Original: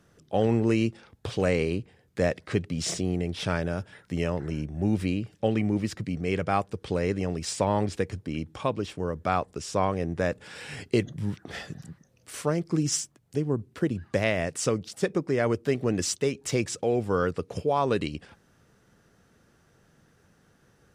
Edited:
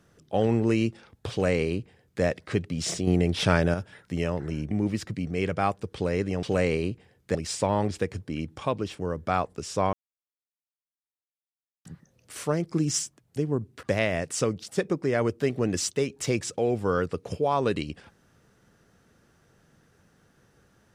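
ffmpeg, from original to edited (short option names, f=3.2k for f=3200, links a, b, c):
-filter_complex "[0:a]asplit=9[a][b][c][d][e][f][g][h][i];[a]atrim=end=3.072[j];[b]atrim=start=3.068:end=3.742,asetpts=PTS-STARTPTS,volume=6dB[k];[c]atrim=start=3.738:end=4.712[l];[d]atrim=start=5.608:end=7.332[m];[e]atrim=start=1.308:end=2.232[n];[f]atrim=start=7.328:end=9.91,asetpts=PTS-STARTPTS,afade=t=out:st=2.578:d=0.004:c=hsin[o];[g]atrim=start=9.91:end=11.83,asetpts=PTS-STARTPTS,volume=0[p];[h]atrim=start=11.83:end=13.812,asetpts=PTS-STARTPTS,afade=t=in:d=0.004:c=hsin[q];[i]atrim=start=14.078[r];[j][k]acrossfade=d=0.004:c1=hsin:c2=hsin[s];[s][l]acrossfade=d=0.004:c1=hsin:c2=hsin[t];[t][m]acrossfade=d=0.004:c1=hsin:c2=hsin[u];[u][n]acrossfade=d=0.004:c1=hsin:c2=hsin[v];[o][p][q]concat=n=3:v=0:a=1[w];[v][w]acrossfade=d=0.004:c1=hsin:c2=hsin[x];[x][r]acrossfade=d=0.004:c1=hsin:c2=hsin"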